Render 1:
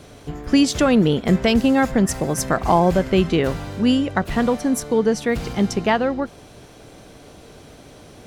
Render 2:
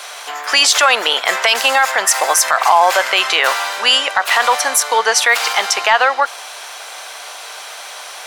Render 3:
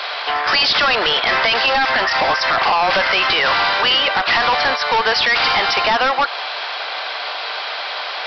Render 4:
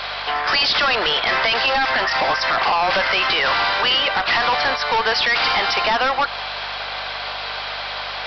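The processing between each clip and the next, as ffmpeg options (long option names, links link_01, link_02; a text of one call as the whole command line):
ffmpeg -i in.wav -af "highpass=frequency=840:width=0.5412,highpass=frequency=840:width=1.3066,acontrast=63,alimiter=level_in=14dB:limit=-1dB:release=50:level=0:latency=1,volume=-1dB" out.wav
ffmpeg -i in.wav -af "acompressor=threshold=-15dB:ratio=2,aresample=11025,asoftclip=type=hard:threshold=-20.5dB,aresample=44100,volume=7.5dB" out.wav
ffmpeg -i in.wav -af "aeval=exprs='val(0)+0.00708*(sin(2*PI*50*n/s)+sin(2*PI*2*50*n/s)/2+sin(2*PI*3*50*n/s)/3+sin(2*PI*4*50*n/s)/4+sin(2*PI*5*50*n/s)/5)':channel_layout=same,volume=-2.5dB" out.wav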